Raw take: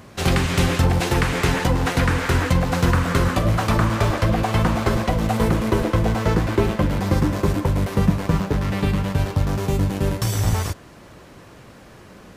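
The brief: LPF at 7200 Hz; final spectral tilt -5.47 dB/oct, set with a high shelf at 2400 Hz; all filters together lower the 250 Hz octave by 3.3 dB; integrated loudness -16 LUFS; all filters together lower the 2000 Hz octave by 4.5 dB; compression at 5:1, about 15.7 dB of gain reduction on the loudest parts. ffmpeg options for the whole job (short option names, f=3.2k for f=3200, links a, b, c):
-af "lowpass=7.2k,equalizer=f=250:t=o:g=-5,equalizer=f=2k:t=o:g=-8,highshelf=f=2.4k:g=4.5,acompressor=threshold=-33dB:ratio=5,volume=20dB"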